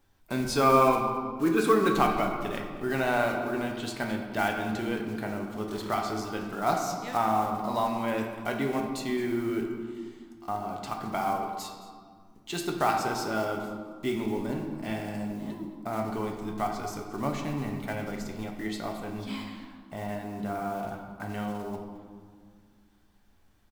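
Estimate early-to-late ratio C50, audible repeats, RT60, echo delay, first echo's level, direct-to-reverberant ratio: 4.5 dB, 1, 1.9 s, 219 ms, −17.5 dB, 1.5 dB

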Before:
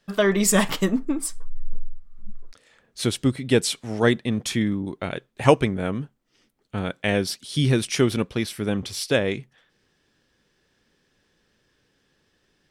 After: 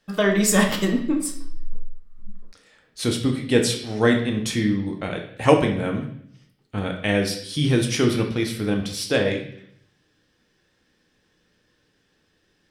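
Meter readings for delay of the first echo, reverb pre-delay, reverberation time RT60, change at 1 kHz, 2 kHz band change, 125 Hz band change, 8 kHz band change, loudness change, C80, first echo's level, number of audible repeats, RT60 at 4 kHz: no echo audible, 3 ms, 0.60 s, +1.0 dB, +1.5 dB, +0.5 dB, 0.0 dB, +1.5 dB, 11.0 dB, no echo audible, no echo audible, 0.70 s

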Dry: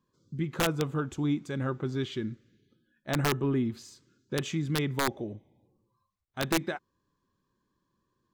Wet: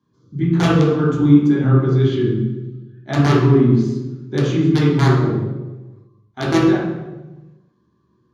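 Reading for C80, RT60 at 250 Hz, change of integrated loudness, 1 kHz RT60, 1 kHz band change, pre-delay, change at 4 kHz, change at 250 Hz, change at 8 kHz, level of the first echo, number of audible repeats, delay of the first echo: 3.5 dB, 1.5 s, +15.0 dB, 0.95 s, +11.0 dB, 3 ms, +6.0 dB, +16.5 dB, can't be measured, no echo audible, no echo audible, no echo audible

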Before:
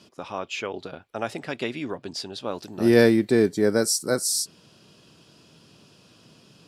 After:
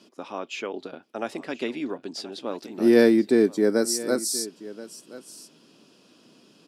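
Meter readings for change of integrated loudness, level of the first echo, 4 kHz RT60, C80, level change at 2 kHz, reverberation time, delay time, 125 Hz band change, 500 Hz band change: 0.0 dB, −17.5 dB, no reverb audible, no reverb audible, −3.0 dB, no reverb audible, 1,029 ms, −9.5 dB, 0.0 dB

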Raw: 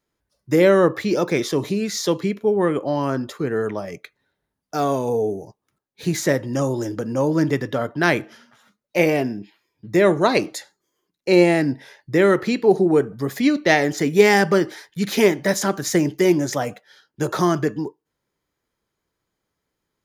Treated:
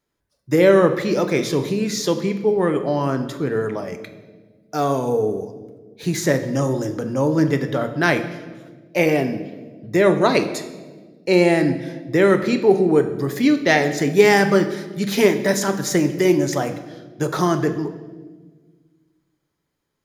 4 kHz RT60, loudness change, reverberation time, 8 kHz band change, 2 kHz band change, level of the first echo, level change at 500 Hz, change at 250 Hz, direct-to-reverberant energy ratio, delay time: 1.1 s, +1.0 dB, 1.4 s, +0.5 dB, +0.5 dB, no echo audible, +1.0 dB, +1.0 dB, 8.0 dB, no echo audible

